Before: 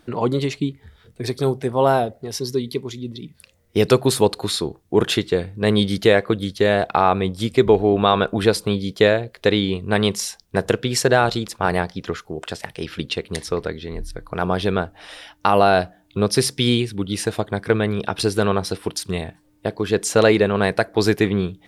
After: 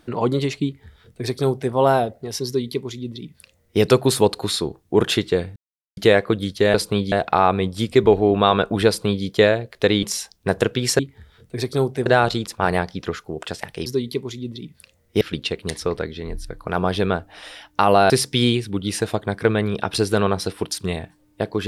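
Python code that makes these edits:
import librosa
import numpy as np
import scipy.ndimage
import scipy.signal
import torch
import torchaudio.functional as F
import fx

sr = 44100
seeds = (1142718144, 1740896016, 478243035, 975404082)

y = fx.edit(x, sr, fx.duplicate(start_s=0.65, length_s=1.07, to_s=11.07),
    fx.duplicate(start_s=2.46, length_s=1.35, to_s=12.87),
    fx.silence(start_s=5.56, length_s=0.41),
    fx.duplicate(start_s=8.49, length_s=0.38, to_s=6.74),
    fx.cut(start_s=9.65, length_s=0.46),
    fx.cut(start_s=15.76, length_s=0.59), tone=tone)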